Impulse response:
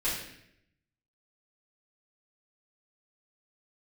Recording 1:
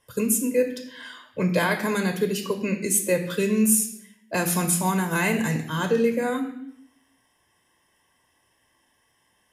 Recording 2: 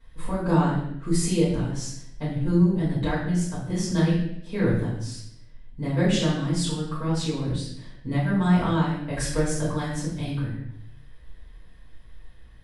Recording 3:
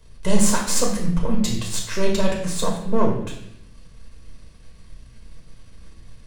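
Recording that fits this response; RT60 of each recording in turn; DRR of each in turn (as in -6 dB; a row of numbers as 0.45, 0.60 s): 2; 0.75, 0.75, 0.75 s; 5.0, -10.0, -1.0 dB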